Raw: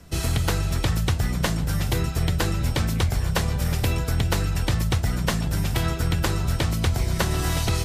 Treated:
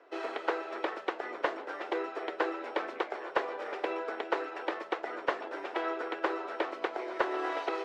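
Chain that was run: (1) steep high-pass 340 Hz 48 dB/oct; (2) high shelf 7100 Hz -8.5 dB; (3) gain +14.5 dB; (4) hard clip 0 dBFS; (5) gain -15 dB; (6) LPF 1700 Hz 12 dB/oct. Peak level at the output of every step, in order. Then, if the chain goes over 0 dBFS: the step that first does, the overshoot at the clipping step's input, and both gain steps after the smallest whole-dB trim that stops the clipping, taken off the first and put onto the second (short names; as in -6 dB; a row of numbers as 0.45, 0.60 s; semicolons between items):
-7.5, -8.0, +6.5, 0.0, -15.0, -14.5 dBFS; step 3, 6.5 dB; step 3 +7.5 dB, step 5 -8 dB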